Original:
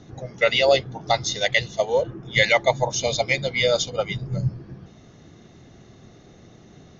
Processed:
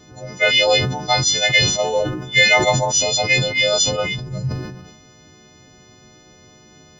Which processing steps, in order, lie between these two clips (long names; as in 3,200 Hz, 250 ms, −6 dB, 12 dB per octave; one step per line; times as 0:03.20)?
every partial snapped to a pitch grid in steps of 3 semitones
level that may fall only so fast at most 55 dB per second